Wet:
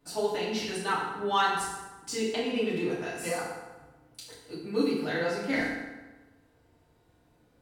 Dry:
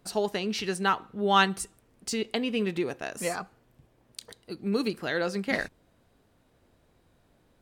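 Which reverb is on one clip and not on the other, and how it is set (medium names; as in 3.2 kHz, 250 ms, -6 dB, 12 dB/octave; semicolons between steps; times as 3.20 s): FDN reverb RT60 1.2 s, low-frequency decay 1×, high-frequency decay 0.7×, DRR -8.5 dB; trim -9.5 dB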